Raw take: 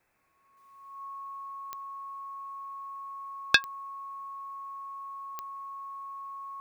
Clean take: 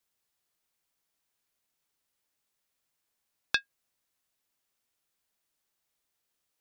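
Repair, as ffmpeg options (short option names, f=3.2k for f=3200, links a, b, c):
-af "adeclick=t=4,bandreject=f=1.1k:w=30,agate=range=-21dB:threshold=-49dB,asetnsamples=n=441:p=0,asendcmd='0.57 volume volume -7dB',volume=0dB"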